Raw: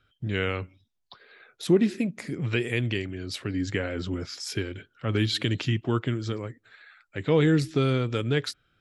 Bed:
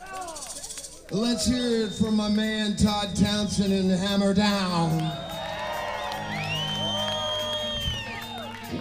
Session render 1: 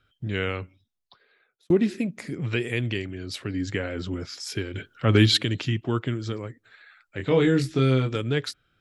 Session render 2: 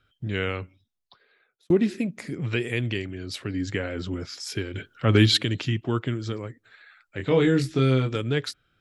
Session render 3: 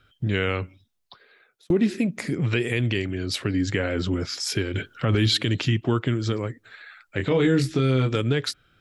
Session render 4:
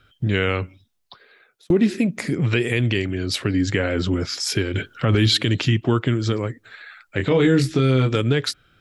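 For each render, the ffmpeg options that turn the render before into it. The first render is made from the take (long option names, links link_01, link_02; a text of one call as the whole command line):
ffmpeg -i in.wav -filter_complex "[0:a]asettb=1/sr,asplit=3[link_01][link_02][link_03];[link_01]atrim=end=7.174[link_04];[link_02]atrim=start=7.17:end=8.16,asetpts=PTS-STARTPTS,afade=type=in:duration=0.004:curve=qsin,afade=type=out:start_time=0.986:duration=0.004:curve=qsin,asplit=2[link_05][link_06];[link_06]adelay=23,volume=-4dB[link_07];[link_05][link_07]amix=inputs=2:normalize=0,atrim=end_sample=43659[link_08];[link_03]atrim=start=8.156[link_09];[link_04][link_08]acrossfade=duration=0.004:curve1=hsin:curve2=qsin[link_10];[link_10][link_09]acrossfade=duration=0.004:curve1=qsin:curve2=hsin,asplit=4[link_11][link_12][link_13][link_14];[link_11]atrim=end=1.7,asetpts=PTS-STARTPTS,afade=type=out:start_time=0.5:duration=1.2[link_15];[link_12]atrim=start=1.7:end=4.742,asetpts=PTS-STARTPTS,afade=type=in:duration=0.004:curve=hsin[link_16];[link_13]atrim=start=4.738:end=5.372,asetpts=PTS-STARTPTS,volume=7.5dB[link_17];[link_14]atrim=start=5.368[link_18];[link_15][link_16]concat=n=2:v=0:a=1[link_19];[link_19][link_17]acrossfade=duration=0.004:curve1=hsin:curve2=hsin[link_20];[link_20][link_18]acrossfade=duration=0.004:curve1=hsin:curve2=hsin" out.wav
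ffmpeg -i in.wav -af anull out.wav
ffmpeg -i in.wav -filter_complex "[0:a]asplit=2[link_01][link_02];[link_02]acompressor=threshold=-29dB:ratio=6,volume=2dB[link_03];[link_01][link_03]amix=inputs=2:normalize=0,alimiter=limit=-12dB:level=0:latency=1:release=26" out.wav
ffmpeg -i in.wav -af "volume=3.5dB" out.wav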